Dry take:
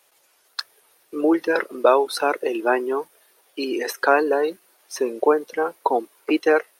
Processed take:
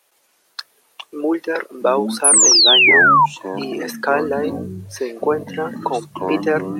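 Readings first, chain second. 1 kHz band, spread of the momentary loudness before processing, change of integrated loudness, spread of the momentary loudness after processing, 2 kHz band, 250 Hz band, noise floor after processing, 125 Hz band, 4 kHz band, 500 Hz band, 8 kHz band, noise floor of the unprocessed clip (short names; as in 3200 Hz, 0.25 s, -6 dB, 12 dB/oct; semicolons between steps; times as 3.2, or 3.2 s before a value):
+5.0 dB, 15 LU, +7.5 dB, 18 LU, +10.0 dB, +2.0 dB, -61 dBFS, n/a, +19.5 dB, 0.0 dB, +24.0 dB, -62 dBFS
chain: echoes that change speed 0.114 s, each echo -7 st, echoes 3, each echo -6 dB; painted sound fall, 2.24–3.26, 890–11000 Hz -10 dBFS; gain -1 dB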